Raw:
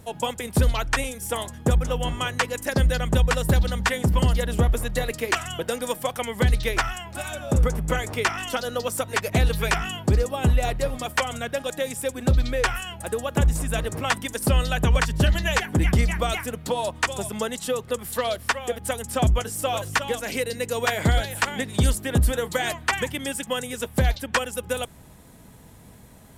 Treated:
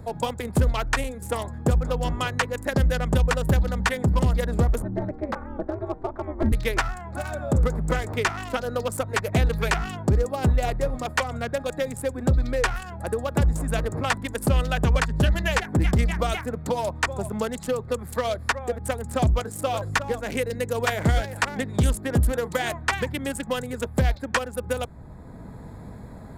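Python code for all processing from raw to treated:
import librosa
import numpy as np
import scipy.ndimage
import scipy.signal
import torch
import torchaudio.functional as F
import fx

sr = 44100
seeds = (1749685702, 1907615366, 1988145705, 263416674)

y = fx.chain(x, sr, fx.lowpass(hz=1100.0, slope=12),
    fx.ring_mod(carrier_hz=150.0), at=(4.82, 6.52))
y = fx.wiener(y, sr, points=15)
y = fx.band_squash(y, sr, depth_pct=40)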